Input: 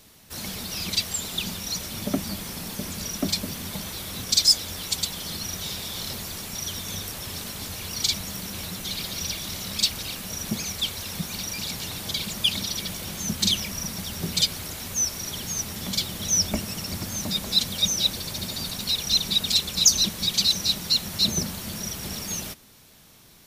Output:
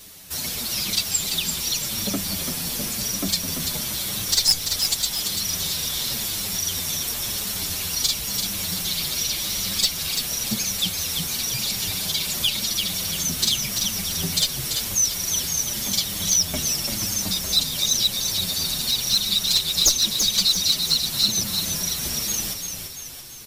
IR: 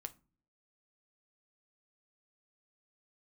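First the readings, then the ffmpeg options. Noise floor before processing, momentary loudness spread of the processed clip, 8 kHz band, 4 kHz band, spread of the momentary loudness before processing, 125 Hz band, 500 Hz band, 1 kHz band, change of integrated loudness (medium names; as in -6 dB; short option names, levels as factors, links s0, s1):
-52 dBFS, 6 LU, +5.0 dB, +3.0 dB, 11 LU, +0.5 dB, +0.5 dB, +1.5 dB, +4.0 dB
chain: -filter_complex "[0:a]highshelf=f=2800:g=8.5,acompressor=threshold=0.0224:ratio=1.5,aeval=exprs='clip(val(0),-1,0.126)':c=same,asplit=7[s0][s1][s2][s3][s4][s5][s6];[s1]adelay=339,afreqshift=-34,volume=0.501[s7];[s2]adelay=678,afreqshift=-68,volume=0.245[s8];[s3]adelay=1017,afreqshift=-102,volume=0.12[s9];[s4]adelay=1356,afreqshift=-136,volume=0.0589[s10];[s5]adelay=1695,afreqshift=-170,volume=0.0288[s11];[s6]adelay=2034,afreqshift=-204,volume=0.0141[s12];[s0][s7][s8][s9][s10][s11][s12]amix=inputs=7:normalize=0,asplit=2[s13][s14];[s14]adelay=7.1,afreqshift=-0.93[s15];[s13][s15]amix=inputs=2:normalize=1,volume=2"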